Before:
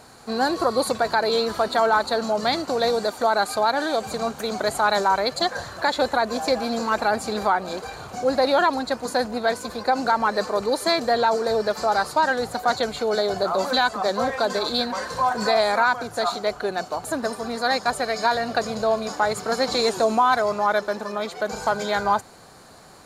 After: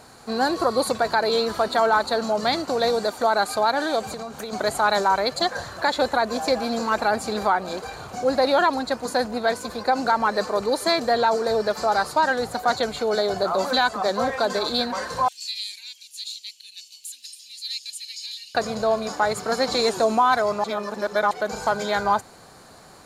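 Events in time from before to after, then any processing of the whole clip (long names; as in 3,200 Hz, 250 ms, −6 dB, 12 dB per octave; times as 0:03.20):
0:04.00–0:04.53: downward compressor 10 to 1, threshold −28 dBFS
0:15.28–0:18.55: elliptic high-pass filter 2,700 Hz, stop band 50 dB
0:20.64–0:21.31: reverse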